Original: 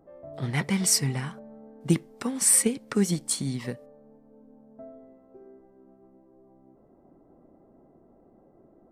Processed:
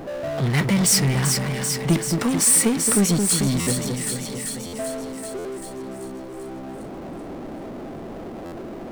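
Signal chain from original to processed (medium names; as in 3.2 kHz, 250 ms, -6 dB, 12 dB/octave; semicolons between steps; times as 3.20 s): two-band feedback delay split 1.4 kHz, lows 220 ms, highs 388 ms, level -9 dB; power-law waveshaper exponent 0.5; buffer glitch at 3.60/4.66/5.38/8.45 s, samples 512, times 5; trim -1.5 dB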